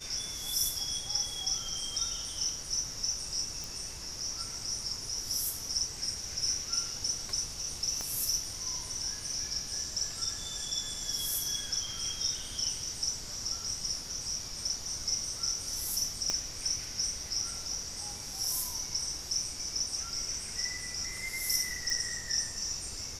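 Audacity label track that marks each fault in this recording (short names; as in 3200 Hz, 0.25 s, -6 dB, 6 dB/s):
3.640000	3.640000	pop
8.010000	8.010000	pop -21 dBFS
16.300000	16.300000	pop -17 dBFS
21.900000	21.900000	pop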